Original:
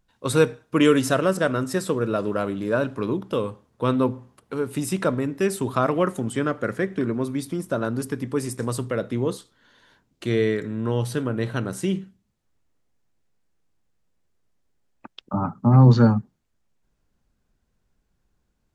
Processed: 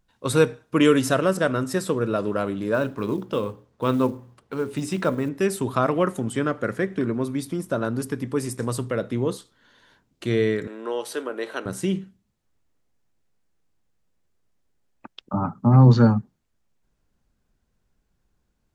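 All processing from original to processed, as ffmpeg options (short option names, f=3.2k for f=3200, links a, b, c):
-filter_complex "[0:a]asettb=1/sr,asplit=3[a][b][c];[a]atrim=end=2.744[d];[b]atrim=start=2.74:end=5.29,asetpts=PTS-STARTPTS,afade=t=in:d=0.004:c=qsin,afade=t=out:st=2.546:d=0.004:c=qsin,lowpass=7.1k,bandreject=f=60:t=h:w=6,bandreject=f=120:t=h:w=6,bandreject=f=180:t=h:w=6,bandreject=f=240:t=h:w=6,bandreject=f=300:t=h:w=6,bandreject=f=360:t=h:w=6,bandreject=f=420:t=h:w=6,bandreject=f=480:t=h:w=6,bandreject=f=540:t=h:w=6,acrusher=bits=8:mode=log:mix=0:aa=0.000001[e];[c]atrim=start=5.286[f];[d][e]acrossfade=d=0.004:c1=hsin:c2=qsin[g];[g][f]acrossfade=d=0.004:c1=qsin:c2=hsin,asettb=1/sr,asplit=3[h][i][j];[h]atrim=end=10.674[k];[i]atrim=start=10.67:end=11.66,asetpts=PTS-STARTPTS,afade=t=in:d=0.004:c=qsin,afade=t=out:st=0.986:d=0.004:c=qsin,highpass=f=350:w=0.5412,highpass=f=350:w=1.3066,acompressor=mode=upward:threshold=-32dB:ratio=2.5:attack=3.2:release=140:knee=2.83:detection=peak[l];[j]atrim=start=11.656[m];[k][l]acrossfade=d=0.004:c1=hsin:c2=qsin[n];[n][m]acrossfade=d=0.004:c1=qsin:c2=hsin"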